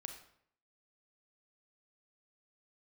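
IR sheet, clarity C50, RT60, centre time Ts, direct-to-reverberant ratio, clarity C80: 7.5 dB, 0.65 s, 19 ms, 5.0 dB, 10.5 dB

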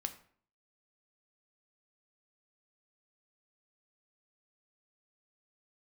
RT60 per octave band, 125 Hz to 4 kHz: 0.60, 0.60, 0.55, 0.50, 0.45, 0.35 s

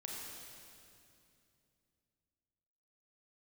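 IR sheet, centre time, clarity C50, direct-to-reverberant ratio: 0.135 s, -1.0 dB, -2.5 dB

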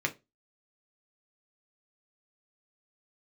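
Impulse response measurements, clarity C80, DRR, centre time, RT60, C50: 28.0 dB, 2.5 dB, 6 ms, 0.25 s, 19.5 dB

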